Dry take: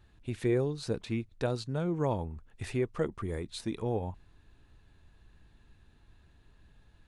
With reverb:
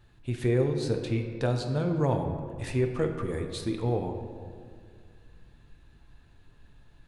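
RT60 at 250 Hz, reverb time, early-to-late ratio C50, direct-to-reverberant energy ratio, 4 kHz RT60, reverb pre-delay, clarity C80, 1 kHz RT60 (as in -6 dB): 2.5 s, 2.1 s, 6.5 dB, 3.5 dB, 1.1 s, 6 ms, 7.5 dB, 1.9 s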